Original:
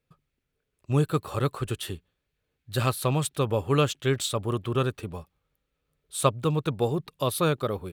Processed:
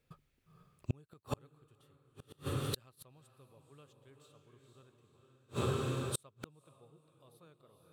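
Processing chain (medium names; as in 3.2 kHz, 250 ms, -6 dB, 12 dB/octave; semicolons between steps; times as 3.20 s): echo that smears into a reverb 479 ms, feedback 44%, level -4 dB; inverted gate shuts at -23 dBFS, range -40 dB; trim +2.5 dB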